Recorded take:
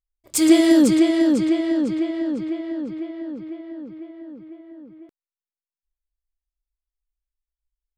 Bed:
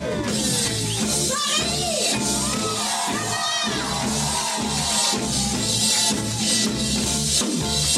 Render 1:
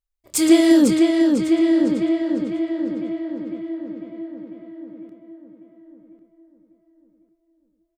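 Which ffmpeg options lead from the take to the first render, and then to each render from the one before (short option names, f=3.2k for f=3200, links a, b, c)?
-filter_complex "[0:a]asplit=2[a][b];[b]adelay=27,volume=-12dB[c];[a][c]amix=inputs=2:normalize=0,asplit=2[d][e];[e]adelay=1098,lowpass=f=1.7k:p=1,volume=-8dB,asplit=2[f][g];[g]adelay=1098,lowpass=f=1.7k:p=1,volume=0.3,asplit=2[h][i];[i]adelay=1098,lowpass=f=1.7k:p=1,volume=0.3,asplit=2[j][k];[k]adelay=1098,lowpass=f=1.7k:p=1,volume=0.3[l];[d][f][h][j][l]amix=inputs=5:normalize=0"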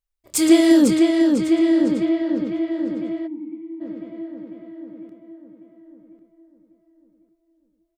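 -filter_complex "[0:a]asettb=1/sr,asplit=3[a][b][c];[a]atrim=end=2.054[d];[b]atrim=start=2.05:end=2.72,asetpts=PTS-STARTPTS,afade=t=in:d=0.004:c=qsin,afade=t=out:st=0.666:d=0.004:c=qsin,equalizer=f=8.4k:w=1.6:g=-11.5[e];[c]atrim=start=2.716[f];[d][e]acrossfade=d=0.004:c1=hsin:c2=qsin[g];[g][f]acrossfade=d=0.004:c1=qsin:c2=hsin,asplit=3[h][i][j];[h]afade=t=out:st=3.26:d=0.02[k];[i]asplit=3[l][m][n];[l]bandpass=f=300:t=q:w=8,volume=0dB[o];[m]bandpass=f=870:t=q:w=8,volume=-6dB[p];[n]bandpass=f=2.24k:t=q:w=8,volume=-9dB[q];[o][p][q]amix=inputs=3:normalize=0,afade=t=in:st=3.26:d=0.02,afade=t=out:st=3.8:d=0.02[r];[j]afade=t=in:st=3.8:d=0.02[s];[k][r][s]amix=inputs=3:normalize=0"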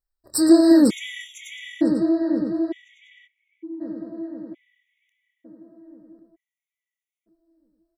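-af "afftfilt=real='re*gt(sin(2*PI*0.55*pts/sr)*(1-2*mod(floor(b*sr/1024/1900),2)),0)':imag='im*gt(sin(2*PI*0.55*pts/sr)*(1-2*mod(floor(b*sr/1024/1900),2)),0)':win_size=1024:overlap=0.75"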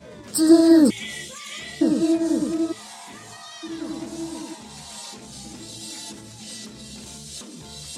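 -filter_complex "[1:a]volume=-17dB[a];[0:a][a]amix=inputs=2:normalize=0"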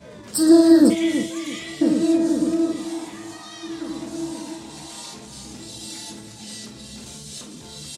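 -filter_complex "[0:a]asplit=2[a][b];[b]adelay=48,volume=-9dB[c];[a][c]amix=inputs=2:normalize=0,asplit=2[d][e];[e]adelay=328,lowpass=f=1.8k:p=1,volume=-9dB,asplit=2[f][g];[g]adelay=328,lowpass=f=1.8k:p=1,volume=0.36,asplit=2[h][i];[i]adelay=328,lowpass=f=1.8k:p=1,volume=0.36,asplit=2[j][k];[k]adelay=328,lowpass=f=1.8k:p=1,volume=0.36[l];[d][f][h][j][l]amix=inputs=5:normalize=0"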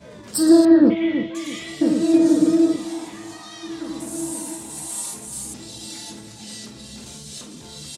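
-filter_complex "[0:a]asettb=1/sr,asplit=3[a][b][c];[a]atrim=end=0.654[d];[b]atrim=start=0.65:end=1.35,asetpts=PTS-STARTPTS,afade=t=in:d=0.004:c=qsin,afade=t=out:st=0.696:d=0.004:c=qsin,lowpass=f=2.9k:w=0.5412,lowpass=f=2.9k:w=1.3066[e];[c]atrim=start=1.346[f];[d][e]acrossfade=d=0.004:c1=hsin:c2=qsin[g];[g][f]acrossfade=d=0.004:c1=qsin:c2=hsin,asettb=1/sr,asplit=3[h][i][j];[h]atrim=end=2.134[k];[i]atrim=start=2.13:end=2.76,asetpts=PTS-STARTPTS,afade=t=in:d=0.004:c=qsin,afade=t=out:st=0.626:d=0.004:c=qsin,aecho=1:1:6.5:0.91,atrim=end_sample=27783[l];[j]atrim=start=2.756[m];[k][l]acrossfade=d=0.004:c1=hsin:c2=qsin[n];[n][m]acrossfade=d=0.004:c1=qsin:c2=hsin,asettb=1/sr,asplit=3[o][p][q];[o]atrim=end=4.004[r];[p]atrim=start=4:end=5.54,asetpts=PTS-STARTPTS,afade=t=in:d=0.004:c=qsin,afade=t=out:st=1.536:d=0.004:c=qsin,highshelf=f=6.8k:t=q:w=1.5:g=13[s];[q]atrim=start=5.536[t];[r][s]acrossfade=d=0.004:c1=hsin:c2=qsin[u];[u][t]acrossfade=d=0.004:c1=qsin:c2=hsin"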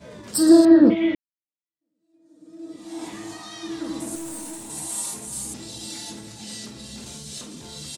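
-filter_complex "[0:a]asettb=1/sr,asplit=3[a][b][c];[a]atrim=end=4.154[d];[b]atrim=start=4.15:end=4.7,asetpts=PTS-STARTPTS,afade=t=in:d=0.004:c=qsin,afade=t=out:st=0.546:d=0.004:c=qsin,aeval=exprs='(tanh(35.5*val(0)+0.35)-tanh(0.35))/35.5':c=same[e];[c]atrim=start=4.696[f];[d][e]acrossfade=d=0.004:c1=hsin:c2=qsin[g];[g][f]acrossfade=d=0.004:c1=qsin:c2=hsin,asplit=2[h][i];[h]atrim=end=1.15,asetpts=PTS-STARTPTS,afade=t=out:st=1.146:d=0.004:c=hsin[j];[i]atrim=start=1.15,asetpts=PTS-STARTPTS,afade=t=in:d=1.9:c=exp[k];[j][k]concat=n=2:v=0:a=1"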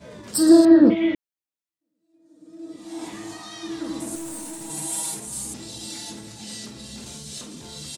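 -filter_complex "[0:a]asettb=1/sr,asplit=3[a][b][c];[a]atrim=end=4.604[d];[b]atrim=start=4.6:end=5.2,asetpts=PTS-STARTPTS,afade=t=in:d=0.004:c=qsin,afade=t=out:st=0.596:d=0.004:c=qsin,aecho=1:1:6.2:0.82,atrim=end_sample=26460[e];[c]atrim=start=5.196[f];[d][e]acrossfade=d=0.004:c1=hsin:c2=qsin[g];[g][f]acrossfade=d=0.004:c1=qsin:c2=hsin"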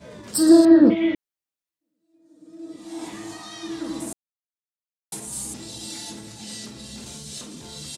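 -filter_complex "[0:a]asplit=3[a][b][c];[a]atrim=end=4.13,asetpts=PTS-STARTPTS,afade=t=out:st=4.126:d=0.004:c=hsin[d];[b]atrim=start=4.13:end=5.12,asetpts=PTS-STARTPTS,volume=0[e];[c]atrim=start=5.12,asetpts=PTS-STARTPTS,afade=t=in:d=0.004:c=hsin[f];[d][e][f]concat=n=3:v=0:a=1"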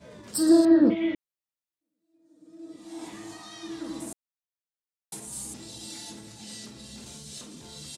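-af "volume=-5.5dB"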